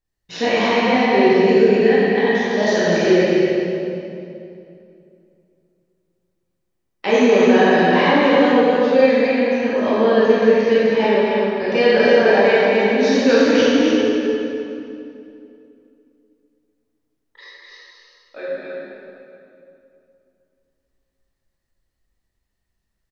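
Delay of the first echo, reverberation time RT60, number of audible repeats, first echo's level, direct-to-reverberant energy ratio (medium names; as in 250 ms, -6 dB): 254 ms, 2.7 s, 1, -4.0 dB, -10.5 dB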